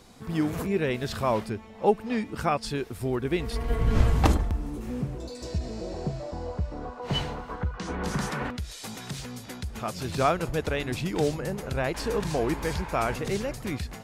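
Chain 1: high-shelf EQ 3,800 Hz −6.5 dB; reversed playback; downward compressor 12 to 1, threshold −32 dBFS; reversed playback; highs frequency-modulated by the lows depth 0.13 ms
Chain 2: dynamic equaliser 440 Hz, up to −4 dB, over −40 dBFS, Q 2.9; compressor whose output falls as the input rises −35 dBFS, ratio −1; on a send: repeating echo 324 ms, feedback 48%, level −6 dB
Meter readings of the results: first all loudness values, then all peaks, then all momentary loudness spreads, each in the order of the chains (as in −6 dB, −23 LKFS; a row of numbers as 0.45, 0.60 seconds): −38.0, −33.5 LKFS; −22.0, −16.0 dBFS; 3, 5 LU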